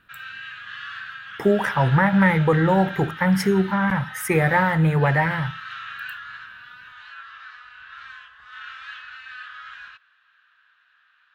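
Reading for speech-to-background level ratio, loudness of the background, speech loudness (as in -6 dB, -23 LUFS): 16.0 dB, -36.0 LUFS, -20.0 LUFS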